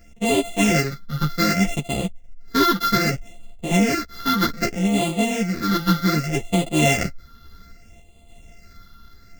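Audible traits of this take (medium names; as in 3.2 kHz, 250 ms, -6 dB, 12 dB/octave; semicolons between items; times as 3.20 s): a buzz of ramps at a fixed pitch in blocks of 64 samples; phasing stages 6, 0.64 Hz, lowest notch 650–1500 Hz; random-step tremolo 3.5 Hz; a shimmering, thickened sound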